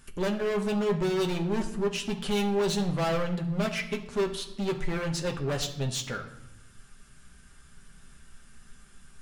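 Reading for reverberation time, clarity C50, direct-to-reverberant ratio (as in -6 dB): 0.90 s, 11.0 dB, 2.0 dB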